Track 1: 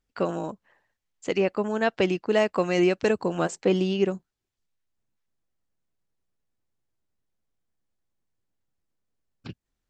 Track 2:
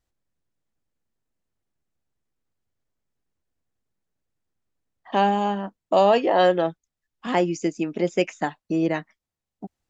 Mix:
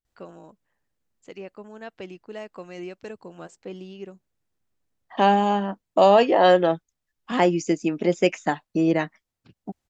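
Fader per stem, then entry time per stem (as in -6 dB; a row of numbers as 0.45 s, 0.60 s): -15.0 dB, +2.0 dB; 0.00 s, 0.05 s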